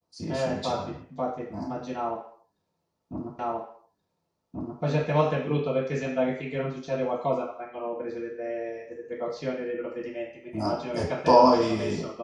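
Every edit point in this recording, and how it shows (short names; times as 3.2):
3.39 repeat of the last 1.43 s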